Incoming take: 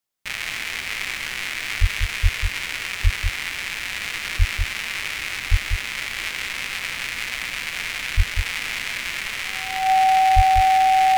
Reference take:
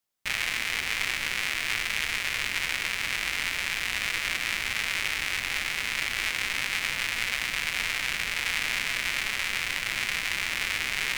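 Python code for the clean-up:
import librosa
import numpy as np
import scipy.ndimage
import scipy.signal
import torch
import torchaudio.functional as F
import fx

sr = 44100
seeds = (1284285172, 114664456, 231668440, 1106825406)

y = fx.notch(x, sr, hz=760.0, q=30.0)
y = fx.fix_deplosive(y, sr, at_s=(1.8, 2.22, 3.03, 4.38, 5.5, 8.16, 10.35))
y = fx.fix_echo_inverse(y, sr, delay_ms=193, level_db=-6.0)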